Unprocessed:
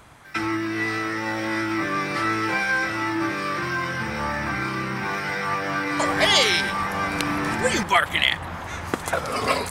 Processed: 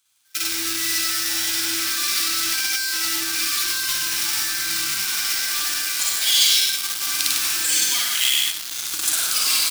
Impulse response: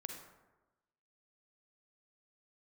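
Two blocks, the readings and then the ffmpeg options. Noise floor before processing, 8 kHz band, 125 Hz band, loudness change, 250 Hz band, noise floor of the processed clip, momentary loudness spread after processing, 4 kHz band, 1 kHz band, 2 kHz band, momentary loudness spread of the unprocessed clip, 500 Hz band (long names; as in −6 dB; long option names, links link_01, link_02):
−34 dBFS, +16.0 dB, below −15 dB, +4.5 dB, −13.0 dB, −31 dBFS, 5 LU, +7.5 dB, −10.5 dB, −3.0 dB, 8 LU, −18.0 dB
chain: -filter_complex "[0:a]lowshelf=frequency=760:width_type=q:width=1.5:gain=-9.5,aecho=1:1:99:0.501,asplit=2[link_01][link_02];[1:a]atrim=start_sample=2205,adelay=55[link_03];[link_02][link_03]afir=irnorm=-1:irlink=0,volume=5dB[link_04];[link_01][link_04]amix=inputs=2:normalize=0,acrusher=bits=3:mode=log:mix=0:aa=0.000001,dynaudnorm=framelen=150:gausssize=7:maxgain=11.5dB,bandreject=frequency=73.35:width_type=h:width=4,bandreject=frequency=146.7:width_type=h:width=4,bandreject=frequency=220.05:width_type=h:width=4,bandreject=frequency=293.4:width_type=h:width=4,bandreject=frequency=366.75:width_type=h:width=4,bandreject=frequency=440.1:width_type=h:width=4,bandreject=frequency=513.45:width_type=h:width=4,bandreject=frequency=586.8:width_type=h:width=4,bandreject=frequency=660.15:width_type=h:width=4,bandreject=frequency=733.5:width_type=h:width=4,bandreject=frequency=806.85:width_type=h:width=4,bandreject=frequency=880.2:width_type=h:width=4,bandreject=frequency=953.55:width_type=h:width=4,bandreject=frequency=1026.9:width_type=h:width=4,bandreject=frequency=1100.25:width_type=h:width=4,bandreject=frequency=1173.6:width_type=h:width=4,bandreject=frequency=1246.95:width_type=h:width=4,bandreject=frequency=1320.3:width_type=h:width=4,bandreject=frequency=1393.65:width_type=h:width=4,bandreject=frequency=1467:width_type=h:width=4,bandreject=frequency=1540.35:width_type=h:width=4,bandreject=frequency=1613.7:width_type=h:width=4,bandreject=frequency=1687.05:width_type=h:width=4,asoftclip=type=tanh:threshold=-11.5dB,aeval=exprs='0.266*(cos(1*acos(clip(val(0)/0.266,-1,1)))-cos(1*PI/2))+0.00944*(cos(4*acos(clip(val(0)/0.266,-1,1)))-cos(4*PI/2))+0.0335*(cos(7*acos(clip(val(0)/0.266,-1,1)))-cos(7*PI/2))':channel_layout=same,equalizer=frequency=315:width_type=o:width=0.33:gain=10,equalizer=frequency=1000:width_type=o:width=0.33:gain=-6,equalizer=frequency=1600:width_type=o:width=0.33:gain=9,alimiter=limit=-9dB:level=0:latency=1:release=22,aexciter=amount=13.8:drive=3.8:freq=2700,volume=-16dB"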